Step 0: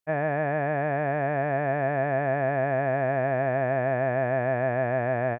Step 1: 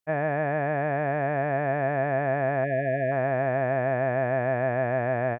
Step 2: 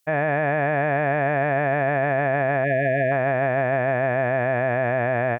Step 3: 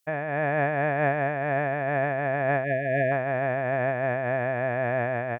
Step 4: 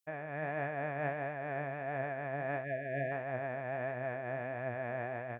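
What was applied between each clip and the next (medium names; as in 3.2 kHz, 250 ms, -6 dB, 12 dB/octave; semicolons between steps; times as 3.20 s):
spectral selection erased 2.64–3.12 s, 700–1600 Hz
treble shelf 2.5 kHz +11 dB; peak limiter -19 dBFS, peak gain reduction 6 dB; trim +7.5 dB
random flutter of the level, depth 65%
flange 1.5 Hz, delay 7.5 ms, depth 7.5 ms, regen +68%; trim -7.5 dB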